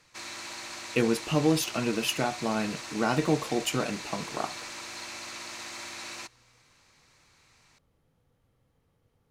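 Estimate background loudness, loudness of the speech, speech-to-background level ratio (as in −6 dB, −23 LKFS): −38.5 LKFS, −29.0 LKFS, 9.5 dB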